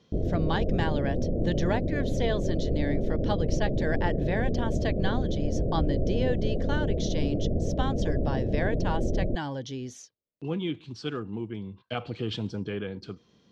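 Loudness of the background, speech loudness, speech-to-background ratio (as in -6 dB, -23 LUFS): -29.5 LUFS, -33.5 LUFS, -4.0 dB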